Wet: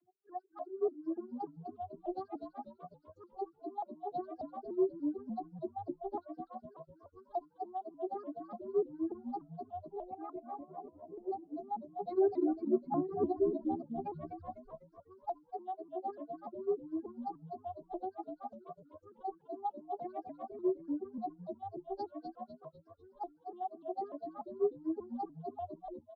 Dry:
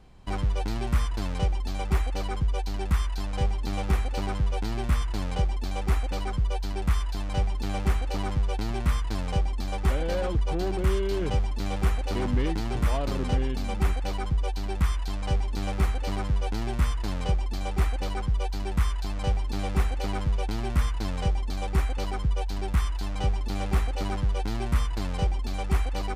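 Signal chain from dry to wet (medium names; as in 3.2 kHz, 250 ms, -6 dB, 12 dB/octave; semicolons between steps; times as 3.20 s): tape stop on the ending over 0.47 s; reverb removal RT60 0.87 s; spectral gate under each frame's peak -15 dB strong; dynamic bell 2.6 kHz, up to +5 dB, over -60 dBFS, Q 1.3; formant-preserving pitch shift +7 st; vocoder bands 32, saw 382 Hz; frequency-shifting echo 249 ms, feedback 44%, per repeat -72 Hz, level -5 dB; vibrato with a chosen wave saw up 3.4 Hz, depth 160 cents; trim -3.5 dB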